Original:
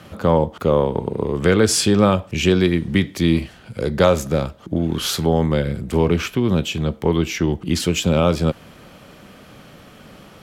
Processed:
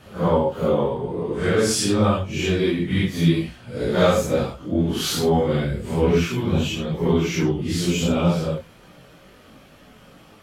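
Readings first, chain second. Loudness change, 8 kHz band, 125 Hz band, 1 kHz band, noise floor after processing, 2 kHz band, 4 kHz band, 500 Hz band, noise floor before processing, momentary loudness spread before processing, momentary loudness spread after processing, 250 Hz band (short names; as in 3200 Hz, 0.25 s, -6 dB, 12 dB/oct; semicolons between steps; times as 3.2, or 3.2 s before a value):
-2.5 dB, -3.0 dB, -2.0 dB, -2.5 dB, -49 dBFS, -2.5 dB, -2.5 dB, -2.0 dB, -45 dBFS, 8 LU, 6 LU, -2.5 dB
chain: phase scrambler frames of 0.2 s; chorus voices 4, 0.51 Hz, delay 20 ms, depth 3.8 ms; vocal rider 2 s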